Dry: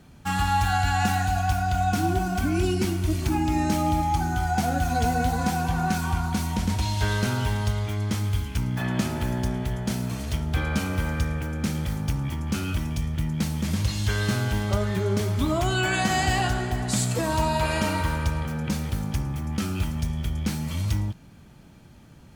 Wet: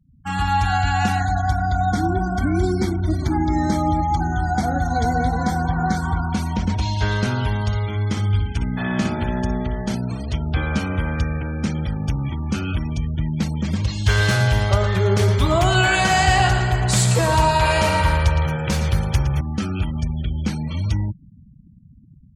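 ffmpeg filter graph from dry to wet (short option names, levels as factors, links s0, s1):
-filter_complex "[0:a]asettb=1/sr,asplit=3[s0][s1][s2];[s0]atrim=end=1.204[s3];[s1]atrim=start=1.2:end=6.24,asetpts=PTS-STARTPTS,afade=t=in:d=0.004:c=qsin,afade=t=out:st=5.036:d=0.004:c=qsin,asuperstop=centerf=2700:order=8:qfactor=3.2,aeval=exprs='val(0)+0.0158*(sin(2*PI*60*n/s)+sin(2*PI*2*60*n/s)/2+sin(2*PI*3*60*n/s)/3+sin(2*PI*4*60*n/s)/4+sin(2*PI*5*60*n/s)/5)':c=same,aecho=1:1:770:0.141,atrim=end_sample=222264[s4];[s2]atrim=start=6.236[s5];[s3][s4]acrossfade=d=0.004:c1=hsin:c2=qsin[s6];[s6][s5]acrossfade=d=0.004:c1=qsin:c2=hsin,asettb=1/sr,asplit=3[s7][s8][s9];[s7]atrim=end=7.664[s10];[s8]atrim=start=7.66:end=9.95,asetpts=PTS-STARTPTS,afade=t=in:d=0.004:c=qsin,afade=t=out:st=2.286:d=0.004:c=qsin,bandreject=f=60:t=h:w=6,bandreject=f=120:t=h:w=6,bandreject=f=180:t=h:w=6,bandreject=f=240:t=h:w=6,bandreject=f=300:t=h:w=6,bandreject=f=360:t=h:w=6,bandreject=f=420:t=h:w=6,bandreject=f=480:t=h:w=6,bandreject=f=540:t=h:w=6,bandreject=f=600:t=h:w=6,aecho=1:1:60|120|180:0.501|0.125|0.0313,atrim=end_sample=100989[s11];[s9]atrim=start=9.946[s12];[s10][s11]acrossfade=d=0.004:c1=hsin:c2=qsin[s13];[s13][s12]acrossfade=d=0.004:c1=qsin:c2=hsin,asettb=1/sr,asplit=3[s14][s15][s16];[s14]atrim=end=14.064[s17];[s15]atrim=start=14.06:end=19.41,asetpts=PTS-STARTPTS,afade=t=in:d=0.004:c=qsin,afade=t=out:st=5.346:d=0.004:c=qsin,equalizer=f=250:t=o:w=0.66:g=-14,acontrast=73,aecho=1:1:114|228|342|456|570:0.355|0.153|0.0656|0.0282|0.0121,atrim=end_sample=235935[s18];[s16]atrim=start=19.406[s19];[s17][s18]acrossfade=d=0.004:c1=hsin:c2=qsin[s20];[s20][s19]acrossfade=d=0.004:c1=qsin:c2=hsin,afftfilt=real='re*gte(hypot(re,im),0.0158)':imag='im*gte(hypot(re,im),0.0158)':win_size=1024:overlap=0.75,highshelf=f=6900:g=-5,dynaudnorm=f=130:g=5:m=2.24,volume=0.708"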